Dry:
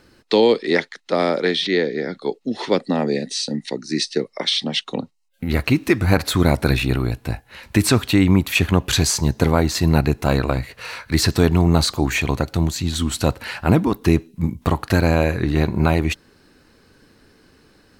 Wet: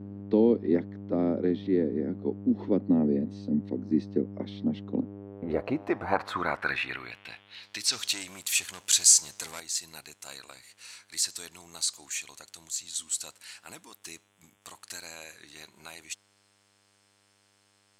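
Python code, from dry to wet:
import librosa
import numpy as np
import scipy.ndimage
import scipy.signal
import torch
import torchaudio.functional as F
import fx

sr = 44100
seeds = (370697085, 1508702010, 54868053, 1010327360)

y = fx.dmg_buzz(x, sr, base_hz=100.0, harmonics=36, level_db=-32.0, tilt_db=-8, odd_only=False)
y = fx.leveller(y, sr, passes=2, at=(7.92, 9.6))
y = fx.filter_sweep_bandpass(y, sr, from_hz=250.0, to_hz=7800.0, start_s=4.87, end_s=8.25, q=2.2)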